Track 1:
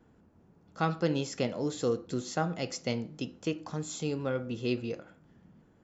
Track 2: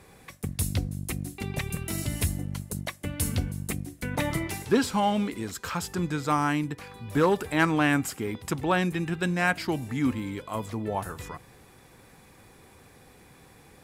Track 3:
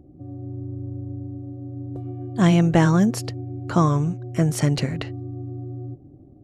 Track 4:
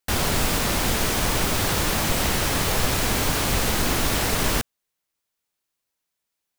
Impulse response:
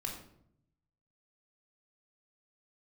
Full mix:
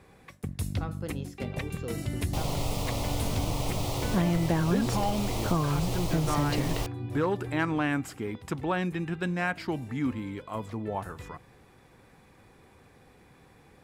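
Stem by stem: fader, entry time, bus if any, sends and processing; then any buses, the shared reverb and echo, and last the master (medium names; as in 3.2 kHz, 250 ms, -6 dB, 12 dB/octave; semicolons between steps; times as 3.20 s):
-9.5 dB, 0.00 s, no send, none
-2.5 dB, 0.00 s, no send, none
-4.5 dB, 1.75 s, no send, decay stretcher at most 46 dB/s
-5.0 dB, 2.25 s, no send, static phaser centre 660 Hz, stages 4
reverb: none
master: treble shelf 5.1 kHz -10.5 dB; compression 2.5:1, threshold -24 dBFS, peak gain reduction 6.5 dB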